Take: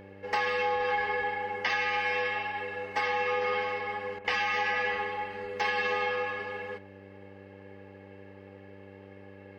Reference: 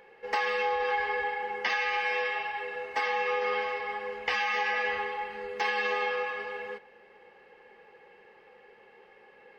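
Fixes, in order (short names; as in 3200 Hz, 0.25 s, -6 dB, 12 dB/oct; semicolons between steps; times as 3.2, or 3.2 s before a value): de-hum 98 Hz, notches 6; interpolate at 4.19, 53 ms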